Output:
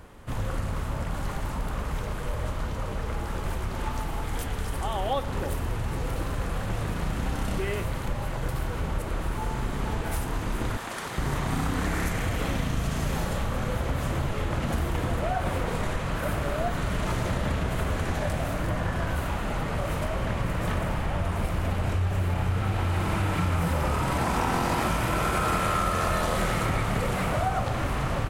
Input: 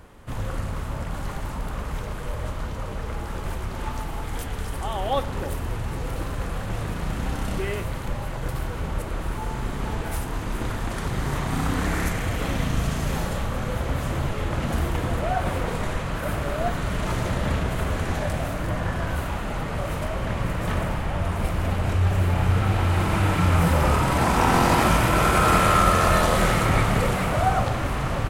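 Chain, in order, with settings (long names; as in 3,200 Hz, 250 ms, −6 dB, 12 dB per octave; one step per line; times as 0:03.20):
0:10.77–0:11.18: high-pass filter 630 Hz 6 dB per octave
downward compressor 4 to 1, threshold −23 dBFS, peak gain reduction 9 dB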